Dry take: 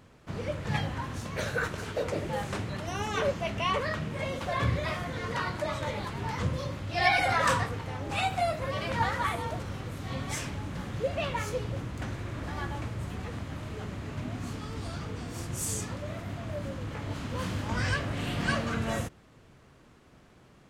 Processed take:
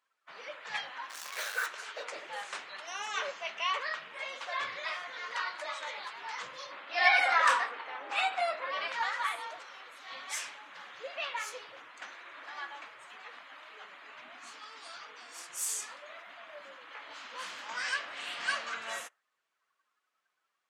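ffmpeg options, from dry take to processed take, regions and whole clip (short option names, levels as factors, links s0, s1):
-filter_complex "[0:a]asettb=1/sr,asplit=3[s0][s1][s2];[s0]atrim=end=1.094[s3];[s1]atrim=start=1.09:end=1.66,asetpts=PTS-STARTPTS,afade=t=in:d=0.004:c=qsin,afade=t=out:st=0.566:d=0.004:c=qsin,bandreject=f=60:t=h:w=6,bandreject=f=120:t=h:w=6,bandreject=f=180:t=h:w=6,bandreject=f=240:t=h:w=6,acrusher=bits=7:dc=4:mix=0:aa=0.000001[s4];[s2]atrim=start=1.656[s5];[s3][s4]acrossfade=d=0.004:c1=hsin:c2=qsin[s6];[s6][s5]acrossfade=d=0.004:c1=qsin:c2=hsin,asettb=1/sr,asplit=3[s7][s8][s9];[s7]atrim=end=6.714[s10];[s8]atrim=start=6.71:end=8.88,asetpts=PTS-STARTPTS,afade=t=in:d=0.004:c=qsin,afade=t=out:st=2.166:d=0.004:c=qsin,highpass=f=180:w=0.5412,highpass=f=180:w=1.3066,highshelf=f=3400:g=-11,acontrast=41[s11];[s9]atrim=start=8.876[s12];[s10][s11]acrossfade=d=0.004:c1=hsin:c2=qsin[s13];[s13][s12]acrossfade=d=0.004:c1=qsin:c2=hsin,highpass=1100,afftdn=nr=19:nf=-55"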